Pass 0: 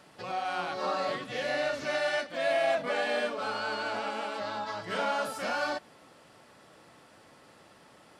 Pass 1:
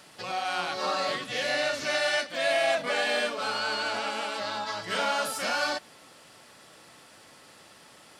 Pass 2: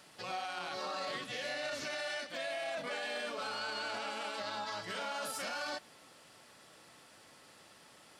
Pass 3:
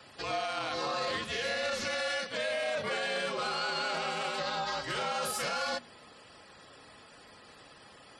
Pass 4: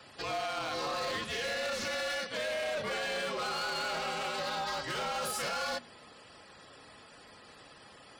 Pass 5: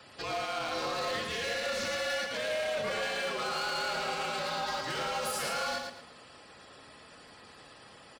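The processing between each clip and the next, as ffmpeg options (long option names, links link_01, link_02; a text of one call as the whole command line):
ffmpeg -i in.wav -af "highshelf=frequency=2100:gain=10.5" out.wav
ffmpeg -i in.wav -af "alimiter=level_in=0.5dB:limit=-24dB:level=0:latency=1:release=24,volume=-0.5dB,volume=-6dB" out.wav
ffmpeg -i in.wav -af "afftfilt=real='re*gte(hypot(re,im),0.001)':imag='im*gte(hypot(re,im),0.001)':win_size=1024:overlap=0.75,afreqshift=-49,bandreject=frequency=60:width_type=h:width=6,bandreject=frequency=120:width_type=h:width=6,bandreject=frequency=180:width_type=h:width=6,bandreject=frequency=240:width_type=h:width=6,volume=6dB" out.wav
ffmpeg -i in.wav -af "volume=30.5dB,asoftclip=hard,volume=-30.5dB" out.wav
ffmpeg -i in.wav -af "aecho=1:1:113|226|339|452:0.562|0.163|0.0473|0.0137" out.wav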